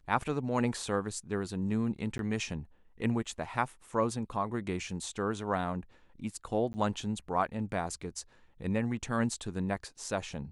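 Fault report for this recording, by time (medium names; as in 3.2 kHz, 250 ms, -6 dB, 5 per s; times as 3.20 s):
2.18–2.19 s: dropout 12 ms
6.73–6.74 s: dropout 10 ms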